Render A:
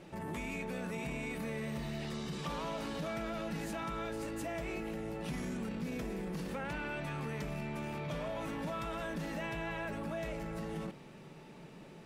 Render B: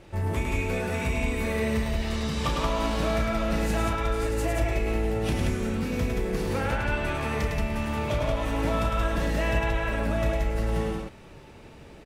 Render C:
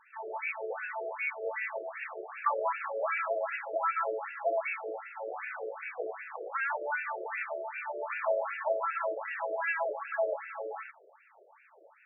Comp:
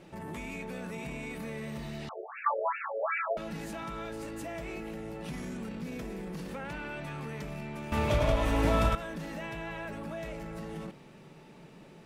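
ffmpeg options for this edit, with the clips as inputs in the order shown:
-filter_complex "[0:a]asplit=3[a][b][c];[a]atrim=end=2.092[d];[2:a]atrim=start=2.088:end=3.372[e];[b]atrim=start=3.368:end=7.922[f];[1:a]atrim=start=7.918:end=8.952[g];[c]atrim=start=8.948[h];[d][e]acrossfade=d=0.004:c1=hsin:c2=hsin[i];[i][f]acrossfade=d=0.004:c1=hsin:c2=hsin[j];[j][g]acrossfade=d=0.004:c1=hsin:c2=hsin[k];[k][h]acrossfade=d=0.004:c1=hsin:c2=hsin"

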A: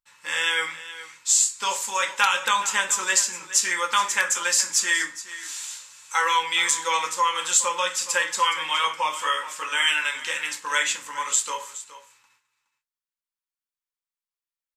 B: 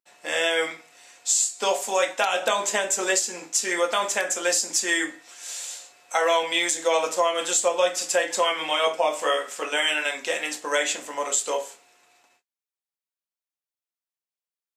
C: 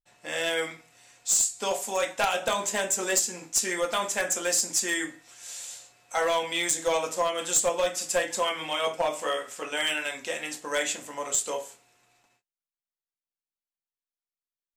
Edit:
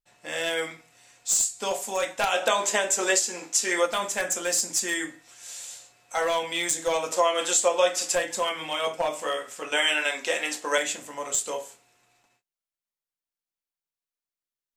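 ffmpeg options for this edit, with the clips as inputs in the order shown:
-filter_complex "[1:a]asplit=3[a][b][c];[2:a]asplit=4[d][e][f][g];[d]atrim=end=2.312[h];[a]atrim=start=2.308:end=3.862[i];[e]atrim=start=3.858:end=7.122[j];[b]atrim=start=7.118:end=8.152[k];[f]atrim=start=8.148:end=9.722[l];[c]atrim=start=9.718:end=10.782[m];[g]atrim=start=10.778[n];[h][i]acrossfade=d=0.004:c1=hsin:c2=hsin[o];[o][j]acrossfade=d=0.004:c1=hsin:c2=hsin[p];[p][k]acrossfade=d=0.004:c1=hsin:c2=hsin[q];[q][l]acrossfade=d=0.004:c1=hsin:c2=hsin[r];[r][m]acrossfade=d=0.004:c1=hsin:c2=hsin[s];[s][n]acrossfade=d=0.004:c1=hsin:c2=hsin"

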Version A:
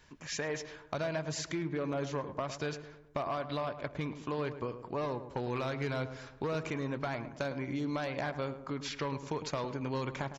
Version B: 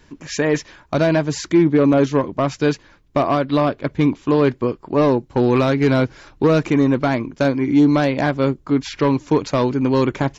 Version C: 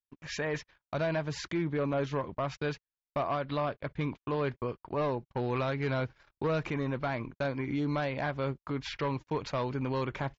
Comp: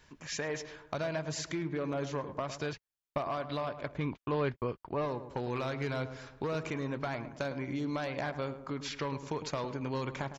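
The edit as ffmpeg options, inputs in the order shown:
-filter_complex "[2:a]asplit=2[a][b];[0:a]asplit=3[c][d][e];[c]atrim=end=2.732[f];[a]atrim=start=2.728:end=3.182[g];[d]atrim=start=3.178:end=4.13[h];[b]atrim=start=3.89:end=5.11[i];[e]atrim=start=4.87[j];[f][g]acrossfade=d=0.004:c1=hsin:c2=hsin[k];[k][h]acrossfade=d=0.004:c1=hsin:c2=hsin[l];[l][i]acrossfade=d=0.24:c1=tri:c2=tri[m];[m][j]acrossfade=d=0.24:c1=tri:c2=tri"

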